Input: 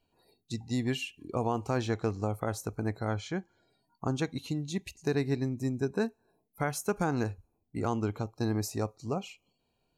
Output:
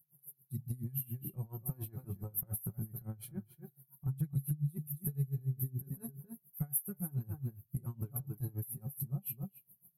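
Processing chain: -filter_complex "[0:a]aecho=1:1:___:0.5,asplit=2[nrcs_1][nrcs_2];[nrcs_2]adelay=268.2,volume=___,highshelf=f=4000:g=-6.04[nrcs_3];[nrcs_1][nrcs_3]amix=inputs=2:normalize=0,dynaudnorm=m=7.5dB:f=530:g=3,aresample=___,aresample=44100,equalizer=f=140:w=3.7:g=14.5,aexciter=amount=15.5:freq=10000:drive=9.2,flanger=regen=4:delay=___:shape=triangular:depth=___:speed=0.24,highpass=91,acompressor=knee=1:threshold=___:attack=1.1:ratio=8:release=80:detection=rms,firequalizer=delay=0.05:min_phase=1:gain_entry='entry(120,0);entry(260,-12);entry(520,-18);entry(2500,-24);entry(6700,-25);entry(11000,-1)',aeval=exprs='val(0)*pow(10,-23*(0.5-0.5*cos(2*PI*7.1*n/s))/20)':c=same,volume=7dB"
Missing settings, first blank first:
5.4, -14dB, 32000, 6.5, 5.6, -32dB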